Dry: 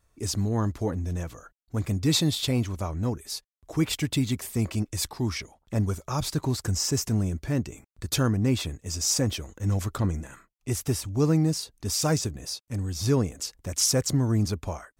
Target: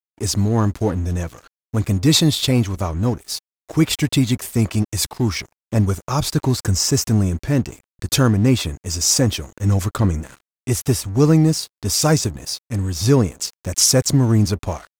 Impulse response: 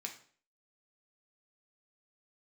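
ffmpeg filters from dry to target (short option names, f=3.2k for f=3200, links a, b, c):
-af "aeval=exprs='sgn(val(0))*max(abs(val(0))-0.00447,0)':c=same,volume=9dB"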